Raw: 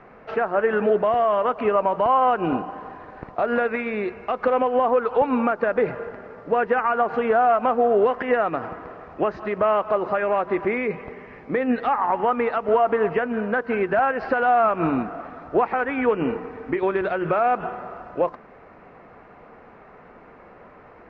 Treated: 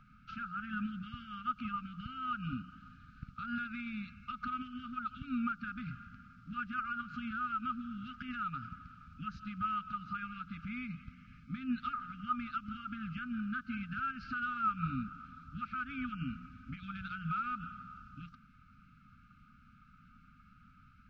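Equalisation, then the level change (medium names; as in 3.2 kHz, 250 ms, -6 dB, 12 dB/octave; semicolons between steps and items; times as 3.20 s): brick-wall FIR band-stop 300–1200 Hz; static phaser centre 780 Hz, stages 4; -3.0 dB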